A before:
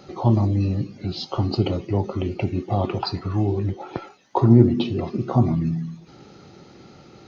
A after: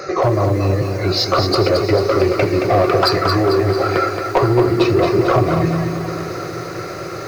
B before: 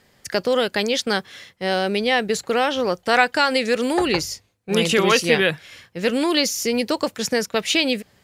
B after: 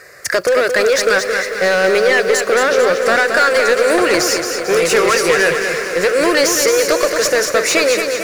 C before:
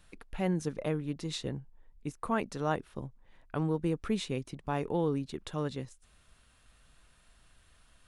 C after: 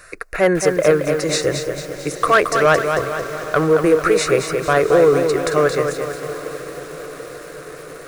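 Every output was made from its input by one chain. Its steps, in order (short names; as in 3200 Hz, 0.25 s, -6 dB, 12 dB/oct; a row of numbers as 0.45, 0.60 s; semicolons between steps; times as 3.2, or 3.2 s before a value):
fixed phaser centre 870 Hz, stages 6; compressor, threshold -25 dBFS; overdrive pedal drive 22 dB, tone 5200 Hz, clips at -13 dBFS; diffused feedback echo 0.798 s, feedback 68%, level -15 dB; lo-fi delay 0.223 s, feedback 55%, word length 8-bit, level -6 dB; normalise peaks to -3 dBFS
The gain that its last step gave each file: +9.0, +7.0, +11.5 dB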